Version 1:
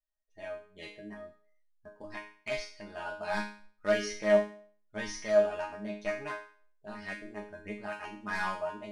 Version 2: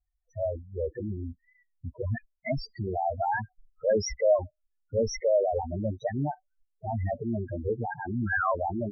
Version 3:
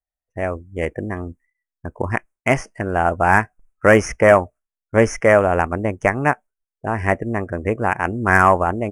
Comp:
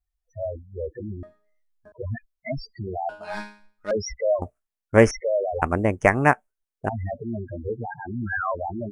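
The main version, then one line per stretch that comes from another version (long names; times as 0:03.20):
2
0:01.23–0:01.92: punch in from 1
0:03.09–0:03.91: punch in from 1
0:04.42–0:05.11: punch in from 3
0:05.62–0:06.89: punch in from 3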